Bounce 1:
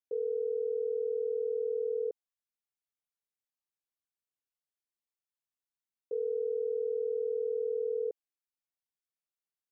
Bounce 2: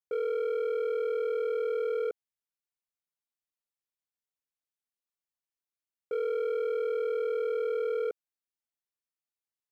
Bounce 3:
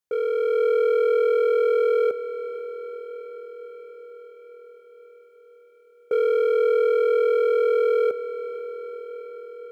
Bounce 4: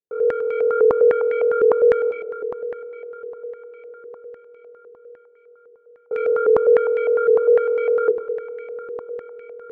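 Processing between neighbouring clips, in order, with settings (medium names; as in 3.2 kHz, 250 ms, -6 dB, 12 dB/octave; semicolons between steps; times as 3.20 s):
waveshaping leveller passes 2
level rider gain up to 4 dB; echo that smears into a reverb 473 ms, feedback 70%, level -13.5 dB; trim +6 dB
on a send at -1 dB: reverberation, pre-delay 3 ms; on the sum: step-sequenced low-pass 9.9 Hz 420–2200 Hz; trim -6 dB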